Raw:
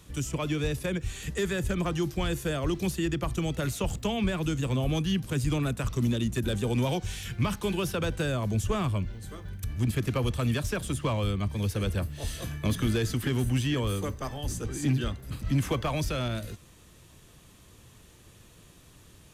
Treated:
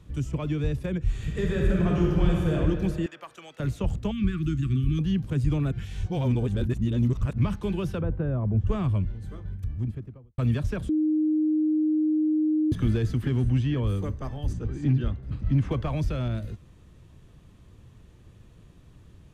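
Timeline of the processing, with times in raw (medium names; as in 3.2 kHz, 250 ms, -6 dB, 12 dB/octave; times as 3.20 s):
1.03–2.55 s: reverb throw, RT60 2.3 s, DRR -2.5 dB
3.06–3.60 s: high-pass 950 Hz
4.11–4.99 s: brick-wall FIR band-stop 390–1100 Hz
5.72–7.38 s: reverse
8.01–8.67 s: low-pass 1.2 kHz
9.31–10.38 s: studio fade out
10.89–12.72 s: bleep 309 Hz -20.5 dBFS
13.31–13.82 s: low-pass 11 kHz -> 4.6 kHz
14.53–15.71 s: distance through air 79 m
whole clip: low-pass 2.4 kHz 6 dB/octave; bass shelf 270 Hz +10 dB; trim -4 dB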